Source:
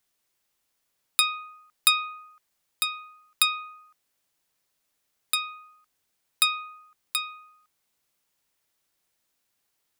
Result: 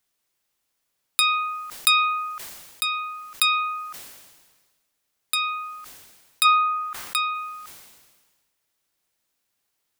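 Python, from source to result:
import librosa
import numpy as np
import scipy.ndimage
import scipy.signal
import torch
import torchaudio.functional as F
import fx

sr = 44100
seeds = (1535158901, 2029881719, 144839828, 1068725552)

y = fx.peak_eq(x, sr, hz=1300.0, db=fx.line((6.44, 14.5), (7.33, 5.5)), octaves=1.6, at=(6.44, 7.33), fade=0.02)
y = fx.sustainer(y, sr, db_per_s=40.0)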